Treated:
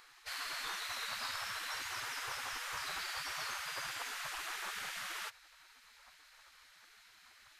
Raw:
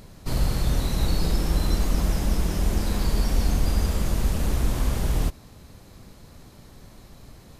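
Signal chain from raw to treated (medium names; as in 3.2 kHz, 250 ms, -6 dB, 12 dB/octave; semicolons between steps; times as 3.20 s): high-pass 400 Hz 12 dB/octave; tilt EQ -4.5 dB/octave; spectral gate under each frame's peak -20 dB weak; trim +5 dB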